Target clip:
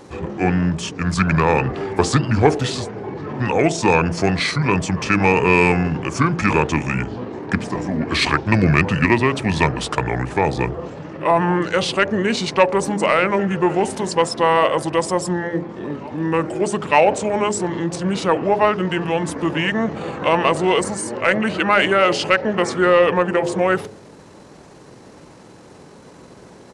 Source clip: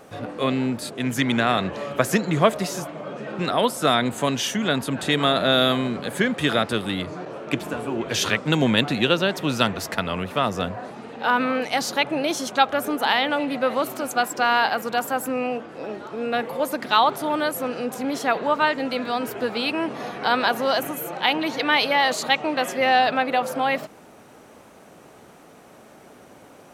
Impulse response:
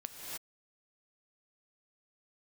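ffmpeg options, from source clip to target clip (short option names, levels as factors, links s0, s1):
-af "bandreject=f=50.1:t=h:w=4,bandreject=f=100.2:t=h:w=4,bandreject=f=150.3:t=h:w=4,bandreject=f=200.4:t=h:w=4,bandreject=f=250.5:t=h:w=4,bandreject=f=300.6:t=h:w=4,bandreject=f=350.7:t=h:w=4,bandreject=f=400.8:t=h:w=4,bandreject=f=450.9:t=h:w=4,bandreject=f=501:t=h:w=4,bandreject=f=551.1:t=h:w=4,bandreject=f=601.2:t=h:w=4,bandreject=f=651.3:t=h:w=4,bandreject=f=701.4:t=h:w=4,bandreject=f=751.5:t=h:w=4,bandreject=f=801.6:t=h:w=4,bandreject=f=851.7:t=h:w=4,bandreject=f=901.8:t=h:w=4,bandreject=f=951.9:t=h:w=4,bandreject=f=1002:t=h:w=4,bandreject=f=1052.1:t=h:w=4,bandreject=f=1102.2:t=h:w=4,bandreject=f=1152.3:t=h:w=4,acontrast=43,asetrate=30296,aresample=44100,atempo=1.45565"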